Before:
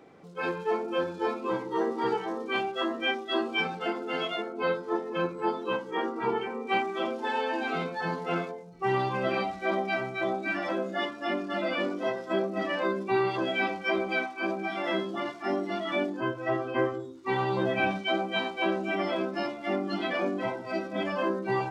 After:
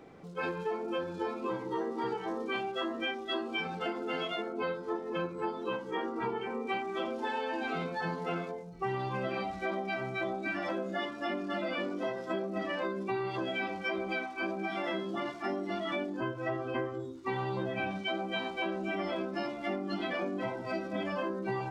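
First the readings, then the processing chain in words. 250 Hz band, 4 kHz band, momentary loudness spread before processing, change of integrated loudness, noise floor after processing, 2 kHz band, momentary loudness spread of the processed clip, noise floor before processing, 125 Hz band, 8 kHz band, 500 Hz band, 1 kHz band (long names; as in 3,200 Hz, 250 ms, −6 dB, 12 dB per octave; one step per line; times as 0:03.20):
−4.0 dB, −5.0 dB, 4 LU, −5.0 dB, −43 dBFS, −5.5 dB, 2 LU, −42 dBFS, −2.5 dB, can't be measured, −5.5 dB, −5.5 dB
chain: low-shelf EQ 97 Hz +11 dB
downward compressor, threshold −31 dBFS, peak gain reduction 10 dB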